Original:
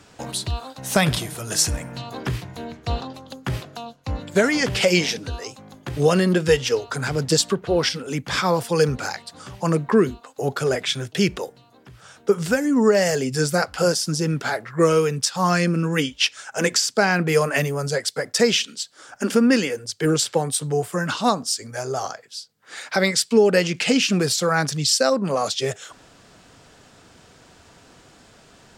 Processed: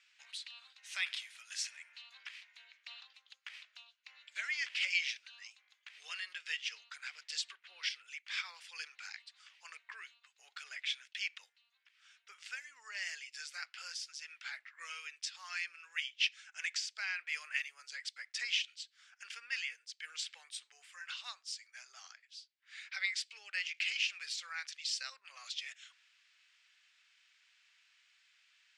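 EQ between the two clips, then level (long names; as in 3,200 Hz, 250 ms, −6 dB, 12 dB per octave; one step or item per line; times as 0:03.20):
four-pole ladder high-pass 1,900 Hz, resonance 45%
high-frequency loss of the air 94 metres
−5.0 dB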